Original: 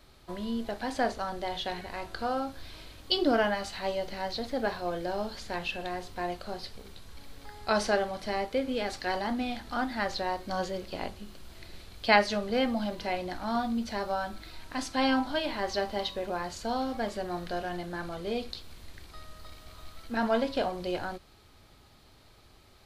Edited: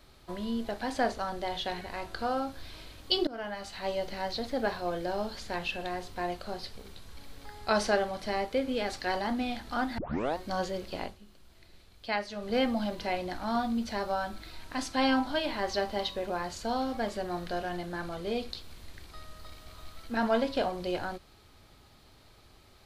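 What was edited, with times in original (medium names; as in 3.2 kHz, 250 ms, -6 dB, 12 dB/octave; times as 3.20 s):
3.27–3.99 s: fade in, from -23 dB
9.98 s: tape start 0.39 s
10.99–12.54 s: dip -10 dB, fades 0.19 s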